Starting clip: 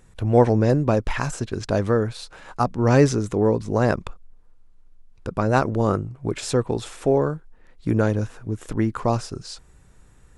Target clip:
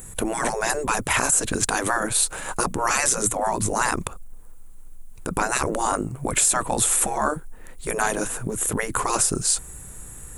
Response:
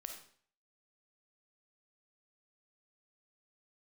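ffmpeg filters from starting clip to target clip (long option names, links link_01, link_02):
-af "afftfilt=real='re*lt(hypot(re,im),0.224)':imag='im*lt(hypot(re,im),0.224)':win_size=1024:overlap=0.75,aexciter=amount=7.5:drive=6.9:freq=7300,alimiter=level_in=18dB:limit=-1dB:release=50:level=0:latency=1,volume=-8dB"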